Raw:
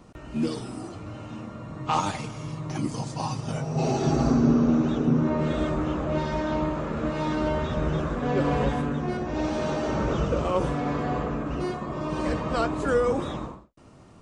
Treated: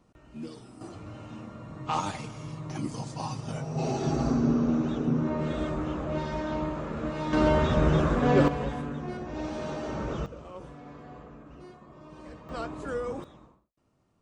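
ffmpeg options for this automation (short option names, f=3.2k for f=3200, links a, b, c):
-af "asetnsamples=n=441:p=0,asendcmd='0.81 volume volume -4.5dB;7.33 volume volume 3.5dB;8.48 volume volume -7dB;10.26 volume volume -18.5dB;12.49 volume volume -10dB;13.24 volume volume -20dB',volume=-13dB"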